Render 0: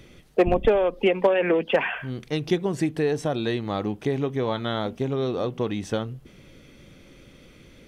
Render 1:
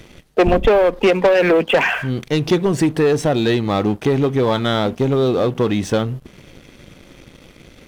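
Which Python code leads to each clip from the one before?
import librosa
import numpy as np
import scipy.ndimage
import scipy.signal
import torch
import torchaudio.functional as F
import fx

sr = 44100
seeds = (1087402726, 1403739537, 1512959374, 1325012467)

y = fx.leveller(x, sr, passes=2)
y = F.gain(torch.from_numpy(y), 3.0).numpy()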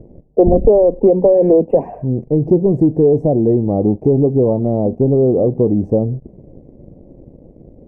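y = scipy.signal.sosfilt(scipy.signal.cheby2(4, 40, 1300.0, 'lowpass', fs=sr, output='sos'), x)
y = F.gain(torch.from_numpy(y), 4.0).numpy()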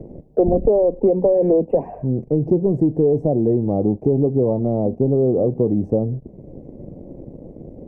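y = fx.band_squash(x, sr, depth_pct=40)
y = F.gain(torch.from_numpy(y), -4.5).numpy()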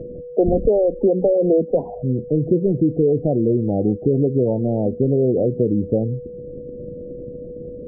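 y = x + 10.0 ** (-31.0 / 20.0) * np.sin(2.0 * np.pi * 490.0 * np.arange(len(x)) / sr)
y = fx.spec_gate(y, sr, threshold_db=-25, keep='strong')
y = fx.lowpass(y, sr, hz=1100.0, slope=6)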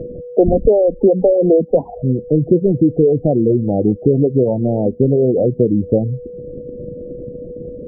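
y = fx.dereverb_blind(x, sr, rt60_s=0.54)
y = F.gain(torch.from_numpy(y), 5.0).numpy()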